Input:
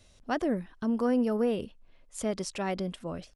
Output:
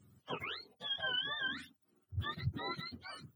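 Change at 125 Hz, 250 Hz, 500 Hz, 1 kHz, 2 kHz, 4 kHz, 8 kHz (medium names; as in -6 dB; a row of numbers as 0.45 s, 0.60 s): -2.0 dB, -21.0 dB, -19.5 dB, -8.0 dB, +3.0 dB, +8.5 dB, under -20 dB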